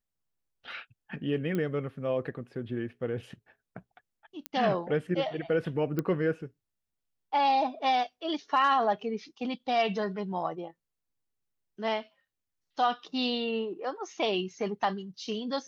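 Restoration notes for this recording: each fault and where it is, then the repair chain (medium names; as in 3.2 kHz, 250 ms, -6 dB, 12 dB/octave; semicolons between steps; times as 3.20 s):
1.55 s: pop -20 dBFS
4.46 s: pop -17 dBFS
5.99 s: pop -17 dBFS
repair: de-click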